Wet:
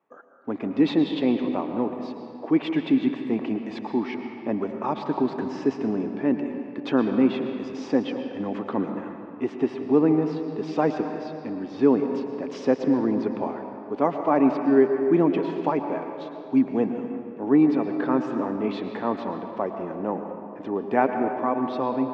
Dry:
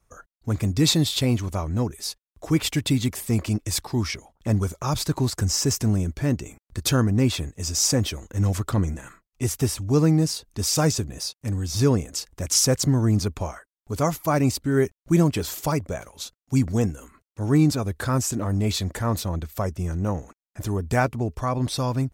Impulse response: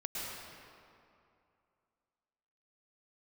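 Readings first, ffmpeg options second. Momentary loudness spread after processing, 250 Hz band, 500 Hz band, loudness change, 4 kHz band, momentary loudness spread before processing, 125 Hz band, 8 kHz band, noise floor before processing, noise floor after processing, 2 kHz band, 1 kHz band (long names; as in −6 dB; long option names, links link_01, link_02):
12 LU, +2.5 dB, +3.5 dB, −1.0 dB, −14.5 dB, 11 LU, −15.5 dB, below −30 dB, below −85 dBFS, −40 dBFS, −2.5 dB, +3.0 dB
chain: -filter_complex "[0:a]highpass=frequency=230:width=0.5412,highpass=frequency=230:width=1.3066,equalizer=frequency=270:width_type=q:width=4:gain=5,equalizer=frequency=400:width_type=q:width=4:gain=3,equalizer=frequency=850:width_type=q:width=4:gain=5,equalizer=frequency=1400:width_type=q:width=4:gain=-6,equalizer=frequency=2200:width_type=q:width=4:gain=-4,lowpass=frequency=2600:width=0.5412,lowpass=frequency=2600:width=1.3066,asplit=2[link_01][link_02];[1:a]atrim=start_sample=2205[link_03];[link_02][link_03]afir=irnorm=-1:irlink=0,volume=-4.5dB[link_04];[link_01][link_04]amix=inputs=2:normalize=0,volume=-2.5dB"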